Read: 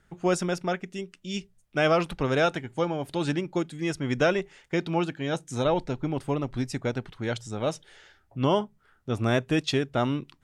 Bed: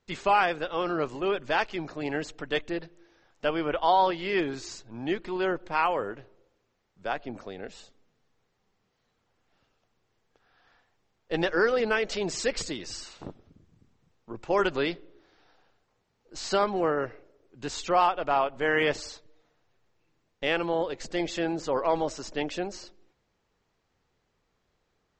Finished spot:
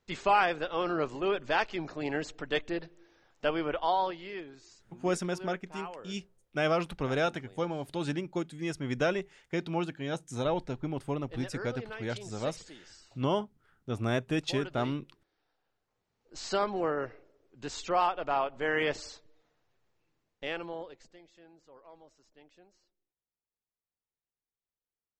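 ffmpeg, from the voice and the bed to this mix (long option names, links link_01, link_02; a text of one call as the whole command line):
ffmpeg -i stem1.wav -i stem2.wav -filter_complex "[0:a]adelay=4800,volume=-5.5dB[link_01];[1:a]volume=10dB,afade=type=out:start_time=3.5:duration=0.94:silence=0.188365,afade=type=in:start_time=15.6:duration=0.75:silence=0.251189,afade=type=out:start_time=19.97:duration=1.23:silence=0.0630957[link_02];[link_01][link_02]amix=inputs=2:normalize=0" out.wav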